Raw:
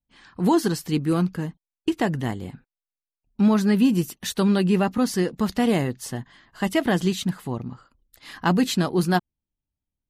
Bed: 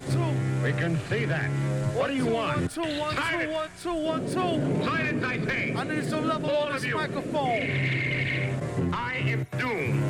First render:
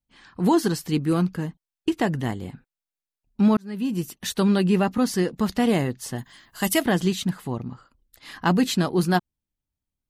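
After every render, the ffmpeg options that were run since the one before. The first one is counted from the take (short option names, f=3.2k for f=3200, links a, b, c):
-filter_complex "[0:a]asettb=1/sr,asplit=3[a][b][c];[a]atrim=end=6.184[d];[b]atrim=start=6.18:end=6.83,asetpts=PTS-STARTPTS,afade=t=in:d=0.004:c=qsin,afade=t=out:st=0.646:d=0.004:c=qsin,aemphasis=mode=production:type=75fm[e];[c]atrim=start=6.826[f];[d][e]acrossfade=d=0.004:c1=hsin:c2=qsin[g];[g][f]acrossfade=d=0.004:c1=qsin:c2=hsin,asplit=2[h][i];[h]atrim=end=3.57,asetpts=PTS-STARTPTS,afade=t=out:st=3.566:d=0.004:c=hsin[j];[i]atrim=start=3.57,asetpts=PTS-STARTPTS,afade=t=in:d=0.69[k];[j][k]concat=n=2:v=0:a=1"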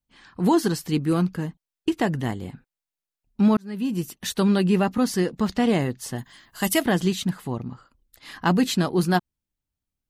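-filter_complex "[0:a]asettb=1/sr,asplit=3[a][b][c];[a]atrim=end=5.384[d];[b]atrim=start=5.38:end=5.82,asetpts=PTS-STARTPTS,afade=t=in:d=0.004:c=qsin,afade=t=out:st=0.436:d=0.004:c=qsin,equalizer=f=12k:w=1.5:g=-10.5[e];[c]atrim=start=5.816[f];[d][e]acrossfade=d=0.004:c1=hsin:c2=qsin[g];[g][f]acrossfade=d=0.004:c1=qsin:c2=hsin"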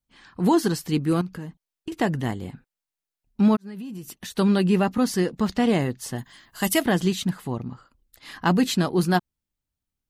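-filter_complex "[0:a]asettb=1/sr,asplit=3[a][b][c];[a]atrim=end=1.214[d];[b]atrim=start=1.21:end=1.92,asetpts=PTS-STARTPTS,afade=t=in:d=0.004:c=qsin,afade=t=out:st=0.706:d=0.004:c=qsin,acompressor=threshold=-33dB:ratio=2.5:attack=3.2:release=140:knee=1:detection=peak[e];[c]atrim=start=1.916[f];[d][e]acrossfade=d=0.004:c1=hsin:c2=qsin[g];[g][f]acrossfade=d=0.004:c1=qsin:c2=hsin,asplit=3[h][i][j];[h]afade=t=out:st=3.55:d=0.02[k];[i]acompressor=threshold=-32dB:ratio=12:attack=3.2:release=140:knee=1:detection=peak,afade=t=in:st=3.55:d=0.02,afade=t=out:st=4.35:d=0.02[l];[j]afade=t=in:st=4.35:d=0.02[m];[k][l][m]amix=inputs=3:normalize=0"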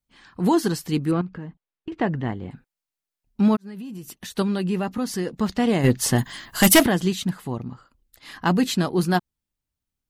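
-filter_complex "[0:a]asettb=1/sr,asplit=3[a][b][c];[a]atrim=end=1.114[d];[b]atrim=start=1.11:end=2.51,asetpts=PTS-STARTPTS,afade=t=in:d=0.004:c=qsin,afade=t=out:st=1.396:d=0.004:c=qsin,lowpass=2.5k[e];[c]atrim=start=2.506[f];[d][e]acrossfade=d=0.004:c1=hsin:c2=qsin[g];[g][f]acrossfade=d=0.004:c1=qsin:c2=hsin,asettb=1/sr,asplit=3[h][i][j];[h]atrim=end=4.424[k];[i]atrim=start=4.42:end=5.27,asetpts=PTS-STARTPTS,afade=t=in:d=0.004:c=qsin,afade=t=out:st=0.846:d=0.004:c=qsin,acompressor=threshold=-28dB:ratio=1.5:attack=3.2:release=140:knee=1:detection=peak[l];[j]atrim=start=5.266[m];[k][l]acrossfade=d=0.004:c1=hsin:c2=qsin[n];[n][m]acrossfade=d=0.004:c1=qsin:c2=hsin,asplit=3[o][p][q];[o]afade=t=out:st=5.83:d=0.02[r];[p]aeval=exprs='0.398*sin(PI/2*2.51*val(0)/0.398)':c=same,afade=t=in:st=5.83:d=0.02,afade=t=out:st=6.86:d=0.02[s];[q]afade=t=in:st=6.86:d=0.02[t];[r][s][t]amix=inputs=3:normalize=0"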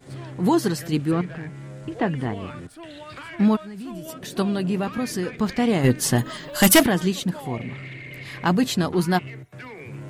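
-filter_complex "[1:a]volume=-11dB[a];[0:a][a]amix=inputs=2:normalize=0"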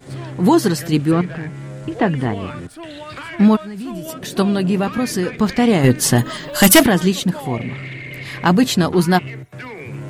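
-af "volume=6.5dB,alimiter=limit=-3dB:level=0:latency=1"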